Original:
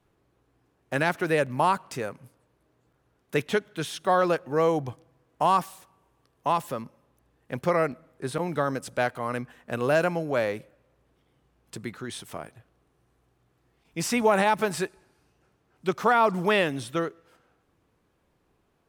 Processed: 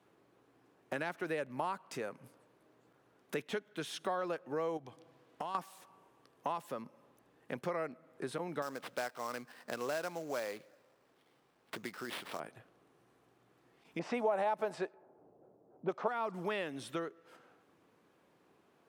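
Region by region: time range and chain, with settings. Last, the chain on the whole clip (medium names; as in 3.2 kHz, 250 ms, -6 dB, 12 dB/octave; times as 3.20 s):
4.77–5.55 s: peaking EQ 3.7 kHz +5.5 dB 1.3 oct + compression 2.5:1, threshold -39 dBFS
8.62–12.40 s: bass shelf 460 Hz -7.5 dB + sample-rate reducer 6.7 kHz, jitter 20%
13.99–16.08 s: level-controlled noise filter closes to 460 Hz, open at -21 dBFS + peaking EQ 650 Hz +12.5 dB 1.4 oct
whole clip: compression 3:1, threshold -42 dBFS; high-pass 200 Hz 12 dB/octave; treble shelf 5.2 kHz -5 dB; trim +3 dB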